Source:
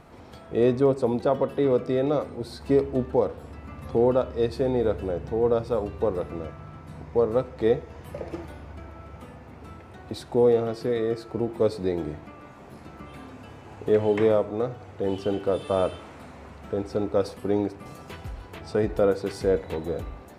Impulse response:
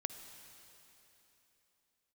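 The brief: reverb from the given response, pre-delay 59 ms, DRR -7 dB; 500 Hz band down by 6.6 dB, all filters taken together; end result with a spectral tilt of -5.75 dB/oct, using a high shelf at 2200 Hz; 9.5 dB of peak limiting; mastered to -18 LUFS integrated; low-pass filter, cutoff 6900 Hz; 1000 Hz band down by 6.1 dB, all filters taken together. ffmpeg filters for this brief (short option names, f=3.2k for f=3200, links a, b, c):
-filter_complex "[0:a]lowpass=6.9k,equalizer=f=500:t=o:g=-6.5,equalizer=f=1k:t=o:g=-7.5,highshelf=f=2.2k:g=7.5,alimiter=limit=-22.5dB:level=0:latency=1,asplit=2[a][b];[1:a]atrim=start_sample=2205,adelay=59[c];[b][c]afir=irnorm=-1:irlink=0,volume=7.5dB[d];[a][d]amix=inputs=2:normalize=0,volume=9.5dB"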